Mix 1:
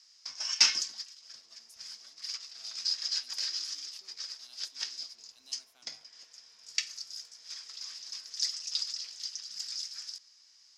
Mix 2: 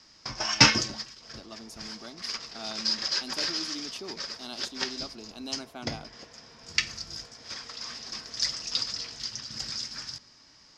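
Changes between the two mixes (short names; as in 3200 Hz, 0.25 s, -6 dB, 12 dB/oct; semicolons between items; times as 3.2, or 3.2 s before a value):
speech +8.0 dB; first sound: add low shelf 110 Hz +12 dB; master: remove pre-emphasis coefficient 0.97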